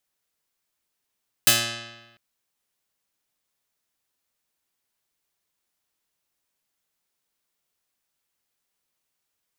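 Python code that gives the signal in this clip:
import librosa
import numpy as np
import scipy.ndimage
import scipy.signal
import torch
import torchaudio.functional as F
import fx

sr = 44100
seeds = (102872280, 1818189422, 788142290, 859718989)

y = fx.pluck(sr, length_s=0.7, note=46, decay_s=1.16, pick=0.25, brightness='medium')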